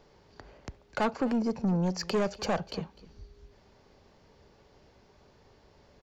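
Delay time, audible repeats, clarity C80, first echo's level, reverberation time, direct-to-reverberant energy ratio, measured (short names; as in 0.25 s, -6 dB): 0.253 s, 1, none, -19.5 dB, none, none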